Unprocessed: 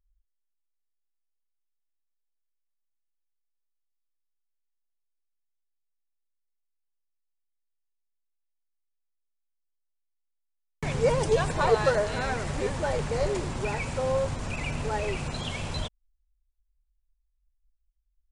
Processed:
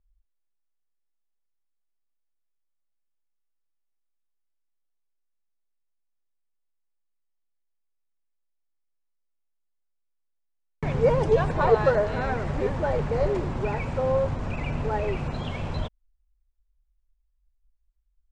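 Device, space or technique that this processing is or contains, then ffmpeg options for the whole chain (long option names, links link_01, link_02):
through cloth: -af "lowpass=7500,highshelf=frequency=3100:gain=-17.5,volume=3.5dB"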